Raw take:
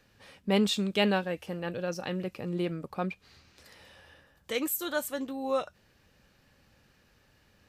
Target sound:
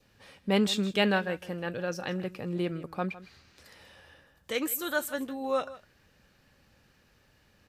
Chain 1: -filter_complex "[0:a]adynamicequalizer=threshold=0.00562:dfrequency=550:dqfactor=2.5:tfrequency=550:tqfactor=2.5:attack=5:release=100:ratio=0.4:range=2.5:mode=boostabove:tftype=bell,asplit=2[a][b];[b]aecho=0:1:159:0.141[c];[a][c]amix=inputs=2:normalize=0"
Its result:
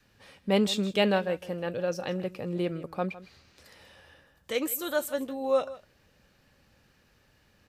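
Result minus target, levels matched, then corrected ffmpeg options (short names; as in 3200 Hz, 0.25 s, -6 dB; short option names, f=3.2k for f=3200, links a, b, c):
2000 Hz band -4.0 dB
-filter_complex "[0:a]adynamicequalizer=threshold=0.00562:dfrequency=1600:dqfactor=2.5:tfrequency=1600:tqfactor=2.5:attack=5:release=100:ratio=0.4:range=2.5:mode=boostabove:tftype=bell,asplit=2[a][b];[b]aecho=0:1:159:0.141[c];[a][c]amix=inputs=2:normalize=0"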